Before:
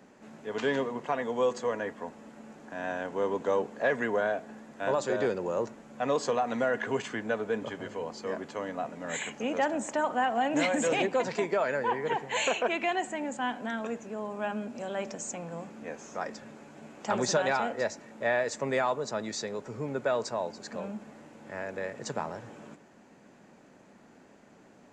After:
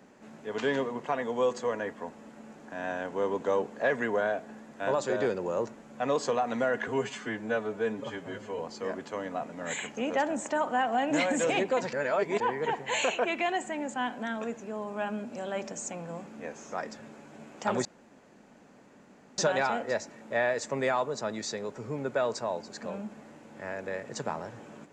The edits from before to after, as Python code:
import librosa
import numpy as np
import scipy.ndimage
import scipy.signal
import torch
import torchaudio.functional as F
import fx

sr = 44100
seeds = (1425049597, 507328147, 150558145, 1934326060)

y = fx.edit(x, sr, fx.stretch_span(start_s=6.88, length_s=1.14, factor=1.5),
    fx.reverse_span(start_s=11.36, length_s=0.47),
    fx.insert_room_tone(at_s=17.28, length_s=1.53), tone=tone)